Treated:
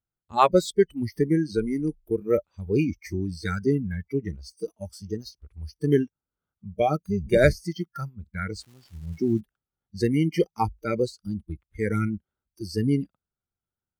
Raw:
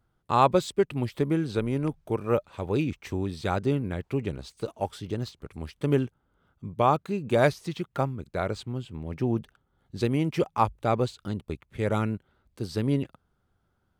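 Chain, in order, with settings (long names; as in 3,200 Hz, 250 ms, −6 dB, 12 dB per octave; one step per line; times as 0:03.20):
0:06.98–0:07.65: sub-octave generator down 1 octave, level −3 dB
noise reduction from a noise print of the clip's start 25 dB
0:08.59–0:09.39: surface crackle 510 per second −51 dBFS
level +4 dB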